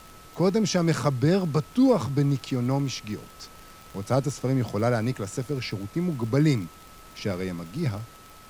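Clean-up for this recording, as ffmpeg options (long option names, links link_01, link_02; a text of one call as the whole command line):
ffmpeg -i in.wav -af "adeclick=threshold=4,bandreject=frequency=1300:width=30,afftdn=noise_reduction=22:noise_floor=-48" out.wav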